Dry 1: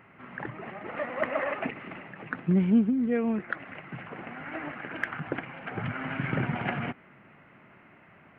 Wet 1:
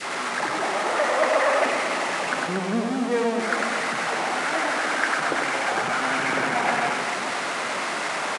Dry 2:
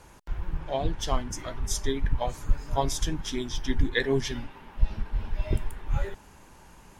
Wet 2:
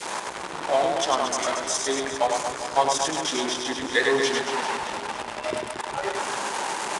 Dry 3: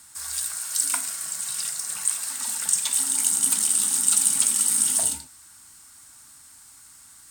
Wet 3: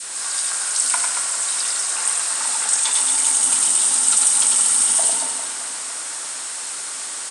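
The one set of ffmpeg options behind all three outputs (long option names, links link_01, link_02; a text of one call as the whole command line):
ffmpeg -i in.wav -af "aeval=exprs='val(0)+0.5*0.0473*sgn(val(0))':channel_layout=same,highpass=370,adynamicequalizer=threshold=0.00794:dfrequency=870:dqfactor=0.82:tfrequency=870:tqfactor=0.82:attack=5:release=100:ratio=0.375:range=2.5:mode=boostabove:tftype=bell,asoftclip=type=tanh:threshold=-5.5dB,aecho=1:1:100|230|399|618.7|904.3:0.631|0.398|0.251|0.158|0.1,aresample=22050,aresample=44100,volume=1.5dB" out.wav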